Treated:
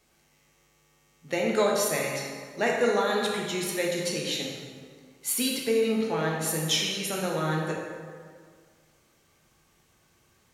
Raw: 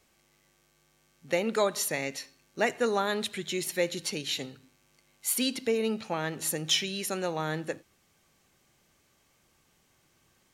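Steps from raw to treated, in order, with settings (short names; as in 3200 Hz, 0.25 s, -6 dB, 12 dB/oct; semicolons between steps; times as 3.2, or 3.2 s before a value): plate-style reverb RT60 1.9 s, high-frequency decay 0.6×, DRR -2 dB; gain -1 dB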